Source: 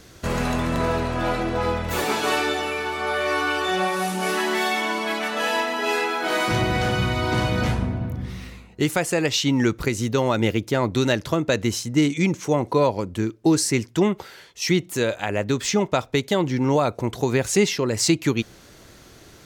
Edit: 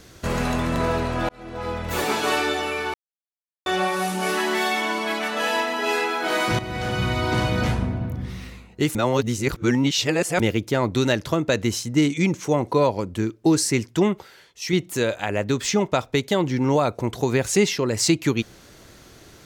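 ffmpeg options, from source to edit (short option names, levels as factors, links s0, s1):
-filter_complex "[0:a]asplit=9[s0][s1][s2][s3][s4][s5][s6][s7][s8];[s0]atrim=end=1.29,asetpts=PTS-STARTPTS,afade=t=out:st=1.286:d=0.004:c=hsin[s9];[s1]atrim=start=1.29:end=2.94,asetpts=PTS-STARTPTS,afade=t=in:d=0.72,afade=t=out:st=1.646:d=0.004:c=hsin[s10];[s2]atrim=start=2.94:end=3.66,asetpts=PTS-STARTPTS,volume=0[s11];[s3]atrim=start=3.66:end=6.59,asetpts=PTS-STARTPTS,afade=t=in:d=0.004:c=hsin,afade=t=out:st=2.926:d=0.004:c=hsin:silence=0.237137[s12];[s4]atrim=start=6.59:end=8.952,asetpts=PTS-STARTPTS,afade=t=in:d=0.52:silence=0.237137[s13];[s5]atrim=start=8.948:end=10.402,asetpts=PTS-STARTPTS,areverse[s14];[s6]atrim=start=10.398:end=14.192[s15];[s7]atrim=start=14.188:end=14.732,asetpts=PTS-STARTPTS,volume=0.562[s16];[s8]atrim=start=14.728[s17];[s9][s10][s11][s12][s13]concat=n=5:v=0:a=1[s18];[s18][s14]acrossfade=d=0.004:c1=hsin:c2=hsin[s19];[s19][s15]acrossfade=d=0.004:c1=hsin:c2=hsin[s20];[s20][s16]acrossfade=d=0.004:c1=hsin:c2=hsin[s21];[s21][s17]acrossfade=d=0.004:c1=hsin:c2=hsin"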